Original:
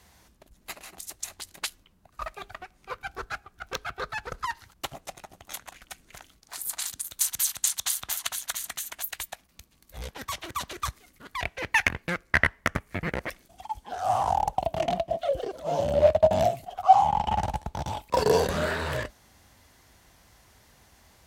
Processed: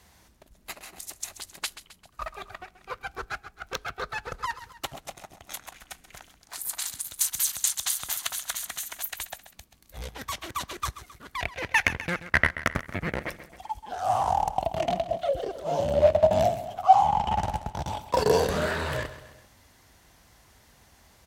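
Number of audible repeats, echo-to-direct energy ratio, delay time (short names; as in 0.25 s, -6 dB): 3, -12.5 dB, 0.132 s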